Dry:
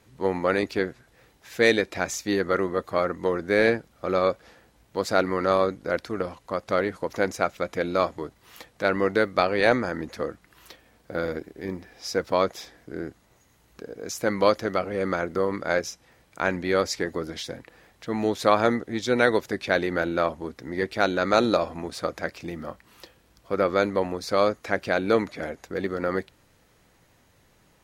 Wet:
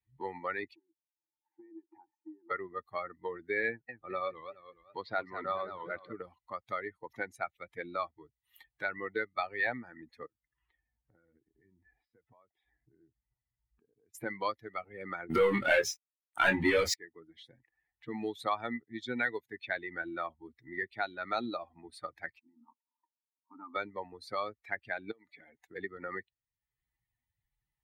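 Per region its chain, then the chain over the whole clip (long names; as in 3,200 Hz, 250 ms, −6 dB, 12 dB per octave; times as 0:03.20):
0:00.75–0:02.51: spectral tilt −1.5 dB per octave + downward compressor 12 to 1, threshold −30 dBFS + pair of resonant band-passes 540 Hz, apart 1.4 octaves
0:03.68–0:06.13: low-pass filter 4,500 Hz 24 dB per octave + feedback echo with a swinging delay time 208 ms, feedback 47%, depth 206 cents, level −6 dB
0:10.26–0:14.15: downward compressor 4 to 1, threshold −45 dBFS + high-frequency loss of the air 400 metres
0:15.30–0:16.94: leveller curve on the samples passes 5 + double-tracking delay 25 ms −2.5 dB
0:22.39–0:23.76: variable-slope delta modulation 64 kbit/s + pair of resonant band-passes 500 Hz, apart 1.8 octaves
0:25.11–0:25.76: high-pass filter 110 Hz 6 dB per octave + downward compressor 16 to 1, threshold −32 dBFS
whole clip: spectral dynamics exaggerated over time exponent 2; parametric band 1,900 Hz +9 dB 0.84 octaves; multiband upward and downward compressor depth 70%; level −5 dB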